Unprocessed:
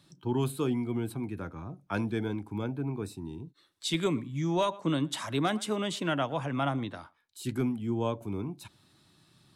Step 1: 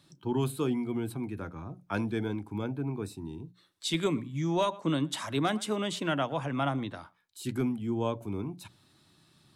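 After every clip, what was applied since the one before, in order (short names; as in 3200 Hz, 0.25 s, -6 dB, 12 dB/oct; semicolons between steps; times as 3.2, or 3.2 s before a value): notches 60/120/180 Hz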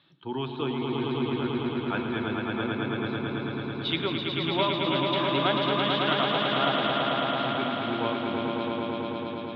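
elliptic low-pass 3500 Hz, stop band 60 dB; tilt +2.5 dB/oct; swelling echo 0.11 s, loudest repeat 5, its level -4.5 dB; gain +2 dB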